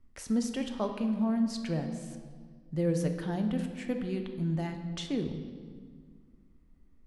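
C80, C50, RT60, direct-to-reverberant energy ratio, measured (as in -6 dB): 9.0 dB, 7.0 dB, 1.8 s, 5.0 dB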